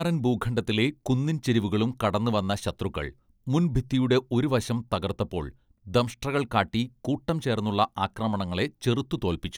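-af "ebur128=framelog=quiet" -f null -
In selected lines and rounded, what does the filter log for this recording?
Integrated loudness:
  I:         -27.0 LUFS
  Threshold: -37.2 LUFS
Loudness range:
  LRA:         1.5 LU
  Threshold: -47.3 LUFS
  LRA low:   -28.1 LUFS
  LRA high:  -26.6 LUFS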